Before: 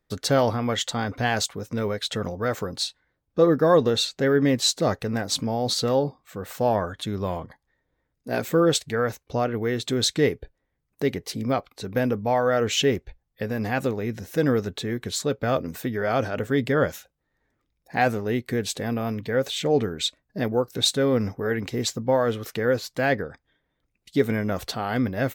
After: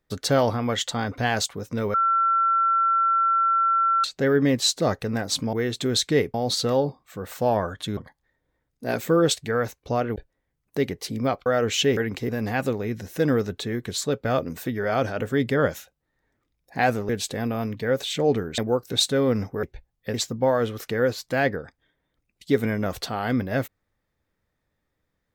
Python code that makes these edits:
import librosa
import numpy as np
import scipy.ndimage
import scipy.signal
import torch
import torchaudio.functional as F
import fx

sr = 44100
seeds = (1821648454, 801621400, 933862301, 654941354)

y = fx.edit(x, sr, fx.bleep(start_s=1.94, length_s=2.1, hz=1350.0, db=-17.5),
    fx.cut(start_s=7.16, length_s=0.25),
    fx.move(start_s=9.6, length_s=0.81, to_s=5.53),
    fx.cut(start_s=11.71, length_s=0.74),
    fx.swap(start_s=12.96, length_s=0.51, other_s=21.48, other_length_s=0.32),
    fx.cut(start_s=18.27, length_s=0.28),
    fx.cut(start_s=20.04, length_s=0.39), tone=tone)